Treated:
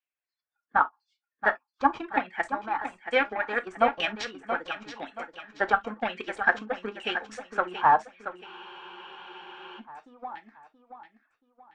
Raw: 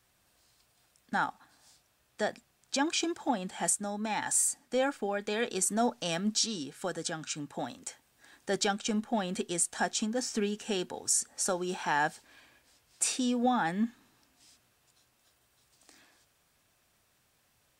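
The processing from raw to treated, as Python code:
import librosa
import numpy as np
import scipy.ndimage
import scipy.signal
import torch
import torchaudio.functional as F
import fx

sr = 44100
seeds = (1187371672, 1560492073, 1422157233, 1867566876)

p1 = fx.dereverb_blind(x, sr, rt60_s=0.94)
p2 = fx.highpass(p1, sr, hz=640.0, slope=6)
p3 = fx.noise_reduce_blind(p2, sr, reduce_db=24)
p4 = fx.high_shelf(p3, sr, hz=8400.0, db=-11.5)
p5 = fx.stretch_vocoder(p4, sr, factor=0.66)
p6 = fx.cheby_harmonics(p5, sr, harmonics=(7, 8), levels_db=(-21, -42), full_scale_db=-19.5)
p7 = fx.filter_lfo_lowpass(p6, sr, shape='saw_down', hz=1.0, low_hz=970.0, high_hz=2800.0, q=3.2)
p8 = p7 + fx.echo_feedback(p7, sr, ms=678, feedback_pct=38, wet_db=-9.5, dry=0)
p9 = fx.rev_gated(p8, sr, seeds[0], gate_ms=80, shape='falling', drr_db=10.5)
p10 = fx.spec_freeze(p9, sr, seeds[1], at_s=8.48, hold_s=1.31)
y = F.gain(torch.from_numpy(p10), 8.5).numpy()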